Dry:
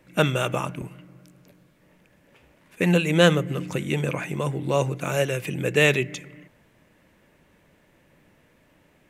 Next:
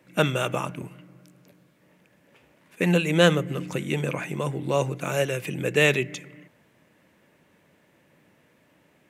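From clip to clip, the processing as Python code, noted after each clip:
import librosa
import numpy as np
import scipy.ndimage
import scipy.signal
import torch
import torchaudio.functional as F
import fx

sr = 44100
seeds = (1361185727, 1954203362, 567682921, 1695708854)

y = scipy.signal.sosfilt(scipy.signal.butter(2, 110.0, 'highpass', fs=sr, output='sos'), x)
y = y * librosa.db_to_amplitude(-1.0)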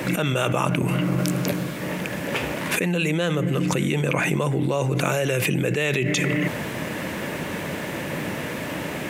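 y = fx.env_flatten(x, sr, amount_pct=100)
y = y * librosa.db_to_amplitude(-8.0)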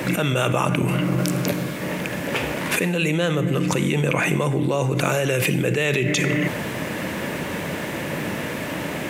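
y = fx.rev_schroeder(x, sr, rt60_s=0.76, comb_ms=32, drr_db=13.0)
y = y * librosa.db_to_amplitude(1.5)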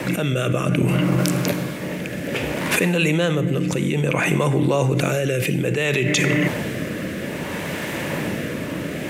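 y = fx.rotary(x, sr, hz=0.6)
y = y * librosa.db_to_amplitude(3.0)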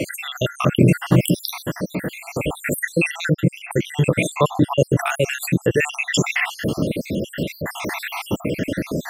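y = fx.spec_dropout(x, sr, seeds[0], share_pct=73)
y = y * librosa.db_to_amplitude(6.5)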